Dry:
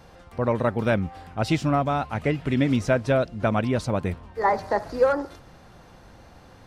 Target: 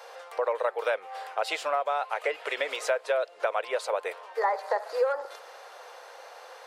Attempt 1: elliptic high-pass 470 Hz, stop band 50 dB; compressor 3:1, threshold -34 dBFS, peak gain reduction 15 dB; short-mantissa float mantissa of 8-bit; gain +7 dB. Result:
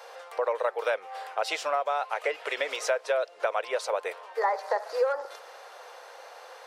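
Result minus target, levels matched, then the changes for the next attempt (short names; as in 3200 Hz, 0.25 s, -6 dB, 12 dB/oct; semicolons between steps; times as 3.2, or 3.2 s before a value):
8000 Hz band +2.5 dB
add after elliptic high-pass: dynamic EQ 5700 Hz, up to -7 dB, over -59 dBFS, Q 4.2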